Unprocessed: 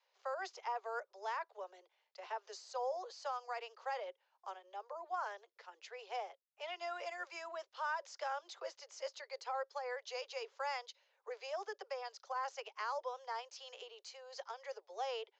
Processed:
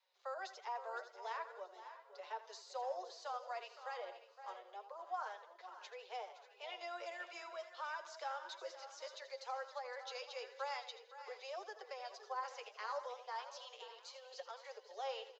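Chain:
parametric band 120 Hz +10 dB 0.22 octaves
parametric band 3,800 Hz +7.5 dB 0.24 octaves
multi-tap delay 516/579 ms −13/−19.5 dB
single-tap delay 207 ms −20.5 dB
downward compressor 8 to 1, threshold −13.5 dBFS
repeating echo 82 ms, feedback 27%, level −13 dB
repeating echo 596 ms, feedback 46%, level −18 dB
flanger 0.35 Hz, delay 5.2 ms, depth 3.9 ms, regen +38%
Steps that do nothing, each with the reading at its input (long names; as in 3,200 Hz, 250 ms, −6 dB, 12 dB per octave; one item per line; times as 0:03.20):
parametric band 120 Hz: nothing at its input below 320 Hz
downward compressor, threshold −13.5 dBFS: peak of its input −27.5 dBFS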